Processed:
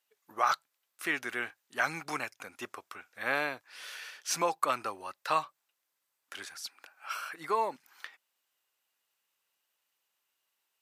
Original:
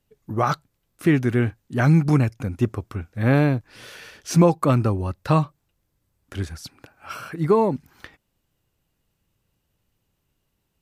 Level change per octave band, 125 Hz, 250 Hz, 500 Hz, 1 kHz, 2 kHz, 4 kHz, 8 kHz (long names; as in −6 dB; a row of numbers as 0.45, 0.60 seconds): −35.0, −24.5, −14.0, −4.5, −2.0, −1.5, −1.5 decibels